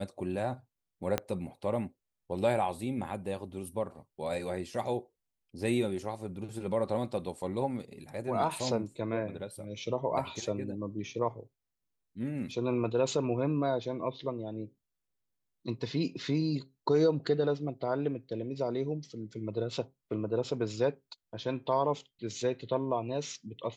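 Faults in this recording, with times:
0:01.18: click −14 dBFS

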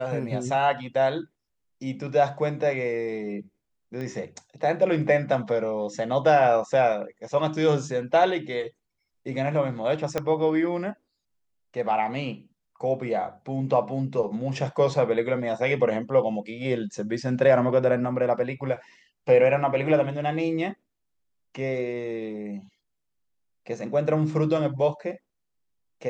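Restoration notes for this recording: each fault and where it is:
0:04.01: click −24 dBFS
0:10.18: click −12 dBFS

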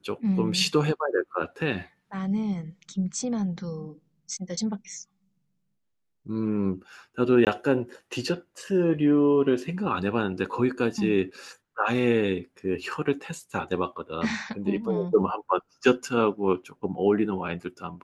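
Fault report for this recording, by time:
0:07.45–0:07.47: drop-out 18 ms

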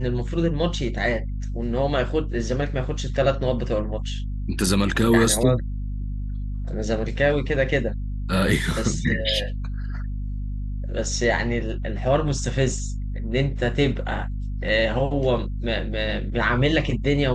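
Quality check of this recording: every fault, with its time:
mains hum 50 Hz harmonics 5 −28 dBFS

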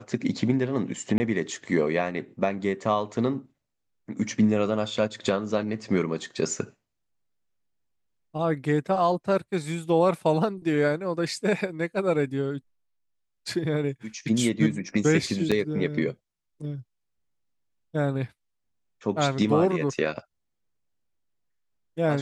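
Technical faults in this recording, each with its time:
0:01.18–0:01.20: drop-out 20 ms
0:15.51–0:15.52: drop-out 6.1 ms

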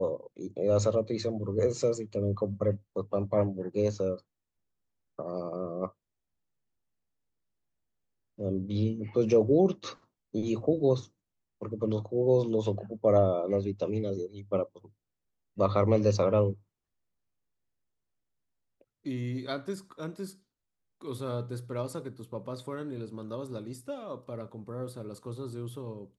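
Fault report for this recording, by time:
nothing to report

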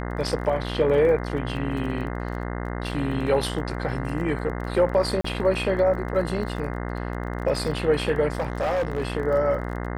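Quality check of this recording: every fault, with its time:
mains buzz 60 Hz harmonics 35 −30 dBFS
surface crackle 21 per second −33 dBFS
0:05.21–0:05.24: drop-out 34 ms
0:08.35–0:09.03: clipping −20.5 dBFS

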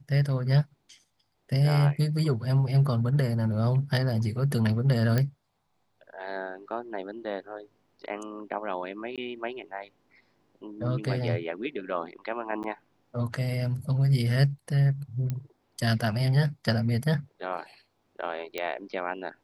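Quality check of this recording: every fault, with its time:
0:05.18: click −13 dBFS
0:09.16–0:09.18: drop-out 17 ms
0:12.63–0:12.64: drop-out 9.5 ms
0:15.30: click −19 dBFS
0:18.58: click −17 dBFS

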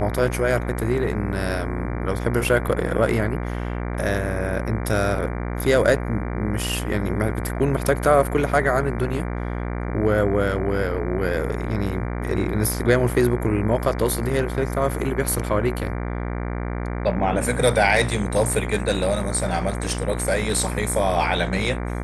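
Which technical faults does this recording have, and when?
mains buzz 60 Hz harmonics 39 −27 dBFS

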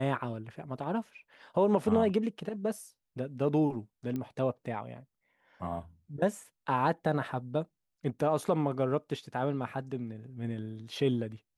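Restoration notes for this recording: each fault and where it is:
0:04.16: click −24 dBFS

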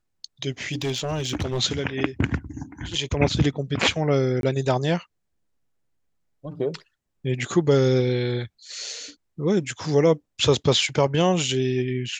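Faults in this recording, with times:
0:00.72–0:01.61: clipping −21 dBFS
0:04.41–0:04.43: drop-out 22 ms

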